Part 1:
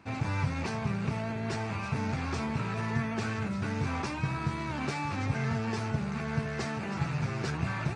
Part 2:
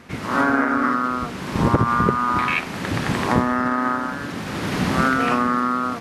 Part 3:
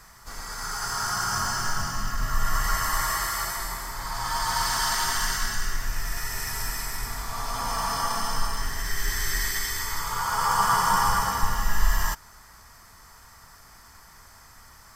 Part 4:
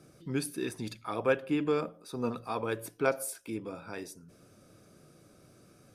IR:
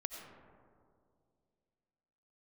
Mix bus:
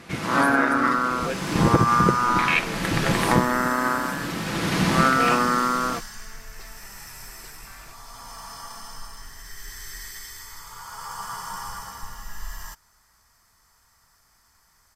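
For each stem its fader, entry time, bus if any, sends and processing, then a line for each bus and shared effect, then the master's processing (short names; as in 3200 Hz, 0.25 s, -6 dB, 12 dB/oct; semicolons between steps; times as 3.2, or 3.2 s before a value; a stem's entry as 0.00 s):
-12.5 dB, 0.00 s, no send, weighting filter A
-1.0 dB, 0.00 s, no send, comb 6 ms, depth 37%
-13.5 dB, 0.60 s, no send, dry
-5.0 dB, 0.00 s, no send, dry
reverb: off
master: bell 8800 Hz +4.5 dB 3 oct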